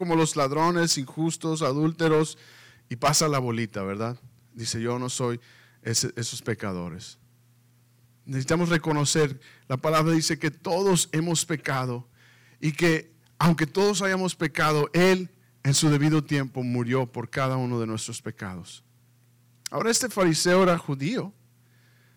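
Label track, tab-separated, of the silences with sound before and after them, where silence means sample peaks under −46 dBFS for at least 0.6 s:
7.150000	8.270000	silence
18.790000	19.650000	silence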